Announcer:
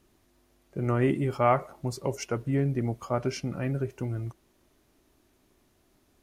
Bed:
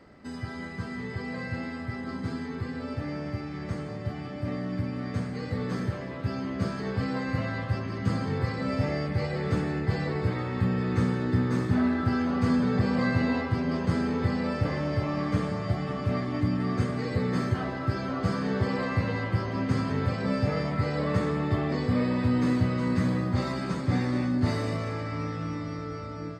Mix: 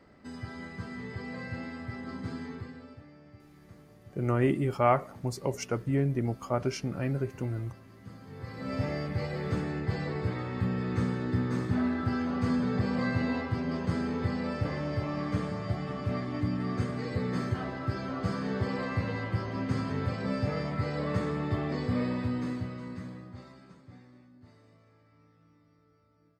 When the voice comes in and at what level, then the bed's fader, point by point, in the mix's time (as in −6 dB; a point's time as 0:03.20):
3.40 s, −1.0 dB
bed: 0:02.49 −4.5 dB
0:03.11 −20 dB
0:08.20 −20 dB
0:08.76 −4 dB
0:22.07 −4 dB
0:24.30 −30.5 dB